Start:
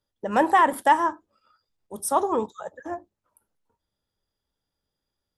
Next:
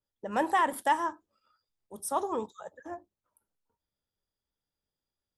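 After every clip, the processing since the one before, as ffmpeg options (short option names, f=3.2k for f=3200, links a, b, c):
-af "adynamicequalizer=threshold=0.0251:dfrequency=2400:dqfactor=0.7:tfrequency=2400:tqfactor=0.7:attack=5:release=100:ratio=0.375:range=2.5:mode=boostabove:tftype=highshelf,volume=-8dB"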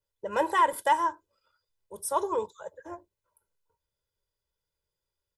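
-af "aecho=1:1:2:0.84"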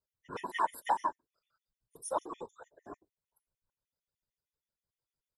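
-af "afftfilt=real='hypot(re,im)*cos(2*PI*random(0))':imag='hypot(re,im)*sin(2*PI*random(1))':win_size=512:overlap=0.75,afftfilt=real='re*gt(sin(2*PI*6.6*pts/sr)*(1-2*mod(floor(b*sr/1024/1800),2)),0)':imag='im*gt(sin(2*PI*6.6*pts/sr)*(1-2*mod(floor(b*sr/1024/1800),2)),0)':win_size=1024:overlap=0.75"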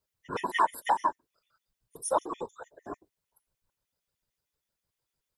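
-af "alimiter=limit=-21dB:level=0:latency=1:release=395,volume=7.5dB"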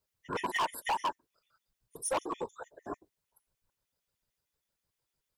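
-af "volume=27dB,asoftclip=hard,volume=-27dB"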